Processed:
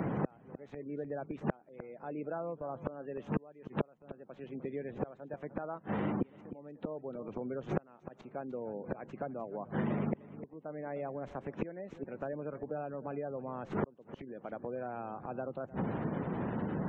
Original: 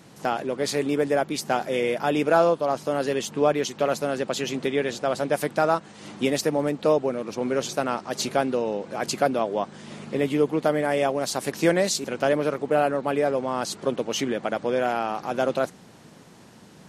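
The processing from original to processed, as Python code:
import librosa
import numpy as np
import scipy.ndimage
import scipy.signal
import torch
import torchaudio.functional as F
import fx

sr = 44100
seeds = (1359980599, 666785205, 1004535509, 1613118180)

p1 = scipy.signal.medfilt(x, 9)
p2 = fx.spec_gate(p1, sr, threshold_db=-25, keep='strong')
p3 = fx.rider(p2, sr, range_db=10, speed_s=0.5)
p4 = p2 + (p3 * 10.0 ** (-2.5 / 20.0))
p5 = fx.gate_flip(p4, sr, shuts_db=-18.0, range_db=-40)
p6 = fx.spacing_loss(p5, sr, db_at_10k=28)
p7 = p6 + fx.echo_single(p6, sr, ms=303, db=-19.5, dry=0)
p8 = fx.band_squash(p7, sr, depth_pct=100)
y = p8 * 10.0 ** (9.5 / 20.0)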